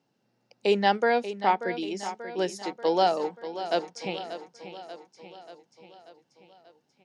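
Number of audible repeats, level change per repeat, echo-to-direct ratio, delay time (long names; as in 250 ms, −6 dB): 5, −4.5 dB, −10.0 dB, 586 ms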